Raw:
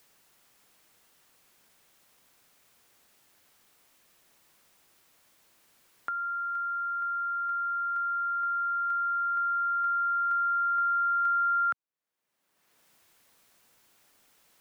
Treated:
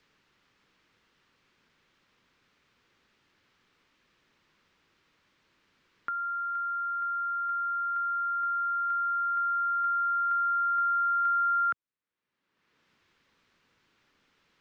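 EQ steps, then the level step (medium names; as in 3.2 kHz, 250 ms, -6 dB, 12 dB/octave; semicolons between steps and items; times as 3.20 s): distance through air 210 m; peaking EQ 700 Hz -10 dB 0.72 oct; +2.5 dB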